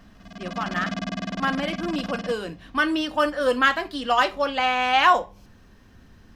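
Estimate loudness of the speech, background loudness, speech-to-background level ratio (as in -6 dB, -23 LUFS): -23.5 LUFS, -32.5 LUFS, 9.0 dB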